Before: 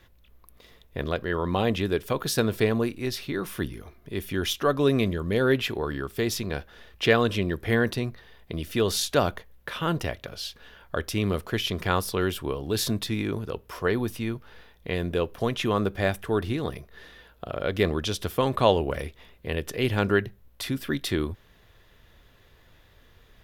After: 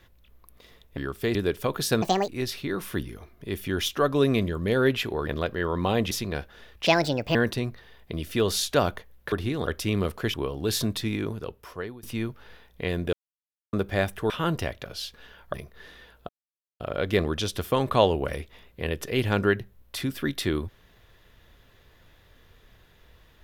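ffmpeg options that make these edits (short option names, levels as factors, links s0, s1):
-filter_complex "[0:a]asplit=18[s0][s1][s2][s3][s4][s5][s6][s7][s8][s9][s10][s11][s12][s13][s14][s15][s16][s17];[s0]atrim=end=0.972[s18];[s1]atrim=start=5.918:end=6.302[s19];[s2]atrim=start=1.808:end=2.484[s20];[s3]atrim=start=2.48:end=2.93,asetpts=PTS-STARTPTS,asetrate=75411,aresample=44100,atrim=end_sample=11605,asetpts=PTS-STARTPTS[s21];[s4]atrim=start=2.926:end=5.922[s22];[s5]atrim=start=0.968:end=1.812[s23];[s6]atrim=start=6.298:end=7.054[s24];[s7]atrim=start=7.05:end=7.75,asetpts=PTS-STARTPTS,asetrate=63504,aresample=44100[s25];[s8]atrim=start=7.746:end=9.722[s26];[s9]atrim=start=16.358:end=16.712[s27];[s10]atrim=start=10.958:end=11.632[s28];[s11]atrim=start=12.398:end=14.09,asetpts=PTS-STARTPTS,afade=t=out:st=0.572:d=1.12:c=qsin:silence=0.0630957[s29];[s12]atrim=start=14.09:end=15.19,asetpts=PTS-STARTPTS,afade=t=in:d=0.004:c=hsin:silence=0.0630957,afade=t=out:st=1.096:d=0.004:c=hsin[s30];[s13]atrim=start=15.19:end=15.79,asetpts=PTS-STARTPTS,volume=0[s31];[s14]atrim=start=15.79:end=16.362,asetpts=PTS-STARTPTS,afade=t=in:d=0.004:c=hsin[s32];[s15]atrim=start=9.718:end=10.962[s33];[s16]atrim=start=16.708:end=17.46,asetpts=PTS-STARTPTS,afade=t=out:st=0.748:d=0.004:c=hsin,apad=pad_dur=0.51[s34];[s17]atrim=start=17.46,asetpts=PTS-STARTPTS,afade=t=in:d=0.004:c=hsin[s35];[s18][s19]acrossfade=d=0.004:c1=hsin:c2=hsin[s36];[s36][s20]acrossfade=d=0.004:c1=hsin:c2=hsin[s37];[s37][s21]acrossfade=d=0.004:c1=hsin:c2=hsin[s38];[s38][s22]acrossfade=d=0.004:c1=hsin:c2=hsin[s39];[s39][s23]acrossfade=d=0.004:c1=hsin:c2=hsin[s40];[s40][s24]acrossfade=d=0.004:c1=hsin:c2=hsin[s41];[s41][s25]acrossfade=d=0.004:c1=hsin:c2=hsin[s42];[s42][s26]acrossfade=d=0.004:c1=hsin:c2=hsin[s43];[s43][s27]acrossfade=d=0.004:c1=hsin:c2=hsin[s44];[s44][s28]acrossfade=d=0.004:c1=hsin:c2=hsin[s45];[s29][s30][s31][s32]concat=n=4:v=0:a=1[s46];[s45][s46]acrossfade=d=0.004:c1=hsin:c2=hsin[s47];[s47][s33]acrossfade=d=0.004:c1=hsin:c2=hsin[s48];[s34][s35]concat=n=2:v=0:a=1[s49];[s48][s49]acrossfade=d=0.004:c1=hsin:c2=hsin"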